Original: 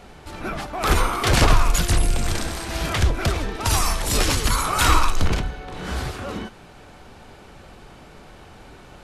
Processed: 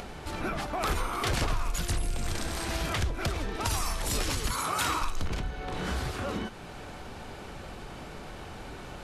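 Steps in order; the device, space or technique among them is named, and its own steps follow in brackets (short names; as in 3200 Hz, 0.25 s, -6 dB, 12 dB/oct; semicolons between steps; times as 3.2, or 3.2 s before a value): 4.51–5.02 HPF 110 Hz 12 dB/oct; upward and downward compression (upward compressor, threshold -38 dBFS; compressor 3:1, threshold -31 dBFS, peak gain reduction 15.5 dB); gain +1 dB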